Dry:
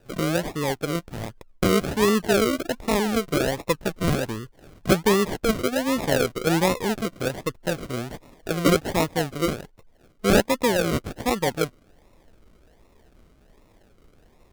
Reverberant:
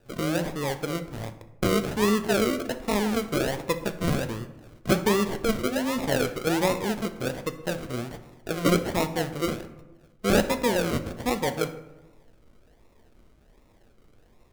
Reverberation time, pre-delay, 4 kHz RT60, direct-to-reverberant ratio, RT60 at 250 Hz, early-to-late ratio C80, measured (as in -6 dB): 1.0 s, 9 ms, 0.55 s, 8.5 dB, 1.2 s, 14.5 dB